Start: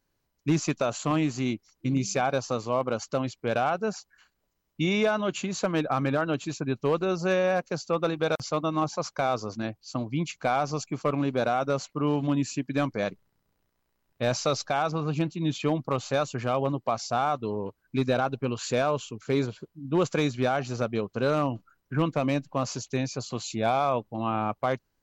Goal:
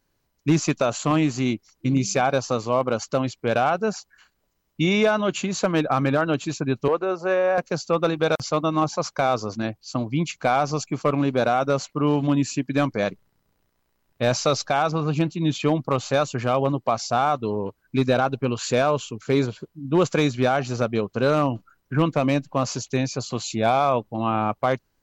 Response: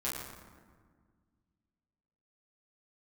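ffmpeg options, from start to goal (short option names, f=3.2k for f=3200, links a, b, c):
-filter_complex "[0:a]asettb=1/sr,asplit=3[a][b][c];[a]atrim=end=6.884[d];[b]atrim=start=6.88:end=7.58,asetpts=PTS-STARTPTS,afade=t=in:d=0.004:c=qsin,afade=t=out:st=0.696:d=0.004:c=qsin,acrossover=split=320 2100:gain=0.141 1 0.224[e][f][g];[e][f][g]amix=inputs=3:normalize=0[h];[c]atrim=start=7.576[i];[d][h]acrossfade=d=0.004:c1=hsin:c2=qsin[j];[j][i]acrossfade=d=0.004:c1=qsin:c2=hsin,volume=5dB"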